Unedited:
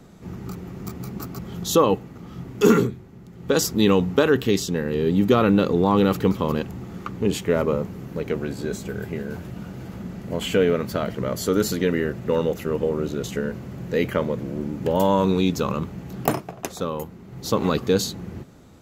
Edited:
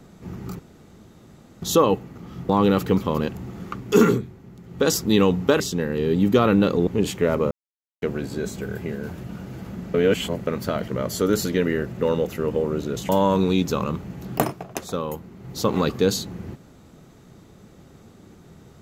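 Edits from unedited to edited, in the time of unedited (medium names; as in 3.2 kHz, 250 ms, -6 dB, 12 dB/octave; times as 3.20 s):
0.59–1.62 s: room tone
4.29–4.56 s: delete
5.83–7.14 s: move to 2.49 s
7.78–8.29 s: mute
10.21–10.74 s: reverse
13.36–14.97 s: delete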